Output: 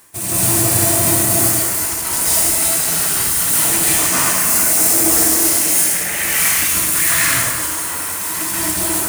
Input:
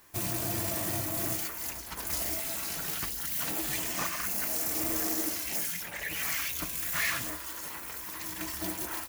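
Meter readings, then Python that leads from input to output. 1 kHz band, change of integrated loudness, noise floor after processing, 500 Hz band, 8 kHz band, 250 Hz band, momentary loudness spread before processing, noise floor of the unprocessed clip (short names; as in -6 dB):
+16.0 dB, +18.0 dB, -23 dBFS, +15.5 dB, +22.0 dB, +15.0 dB, 8 LU, -41 dBFS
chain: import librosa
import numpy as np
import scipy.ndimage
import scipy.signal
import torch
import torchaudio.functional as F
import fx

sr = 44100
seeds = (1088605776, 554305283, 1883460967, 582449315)

y = scipy.signal.sosfilt(scipy.signal.butter(2, 62.0, 'highpass', fs=sr, output='sos'), x)
y = fx.peak_eq(y, sr, hz=9000.0, db=12.0, octaves=0.57)
y = y * (1.0 - 0.36 / 2.0 + 0.36 / 2.0 * np.cos(2.0 * np.pi * 3.2 * (np.arange(len(y)) / sr)))
y = fx.rev_plate(y, sr, seeds[0], rt60_s=1.6, hf_ratio=0.75, predelay_ms=120, drr_db=-8.5)
y = y * librosa.db_to_amplitude(8.0)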